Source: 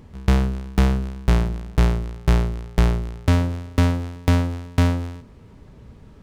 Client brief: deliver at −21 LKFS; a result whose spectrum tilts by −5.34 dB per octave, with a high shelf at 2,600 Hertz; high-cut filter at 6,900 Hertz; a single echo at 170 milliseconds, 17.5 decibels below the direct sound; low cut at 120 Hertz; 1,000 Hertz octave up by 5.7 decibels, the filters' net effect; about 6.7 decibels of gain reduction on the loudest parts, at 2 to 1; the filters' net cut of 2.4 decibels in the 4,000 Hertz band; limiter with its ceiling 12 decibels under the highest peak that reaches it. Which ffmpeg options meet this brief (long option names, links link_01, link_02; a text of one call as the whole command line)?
ffmpeg -i in.wav -af "highpass=120,lowpass=6900,equalizer=frequency=1000:width_type=o:gain=6.5,highshelf=frequency=2600:gain=6,equalizer=frequency=4000:width_type=o:gain=-8.5,acompressor=threshold=-26dB:ratio=2,alimiter=limit=-17.5dB:level=0:latency=1,aecho=1:1:170:0.133,volume=13dB" out.wav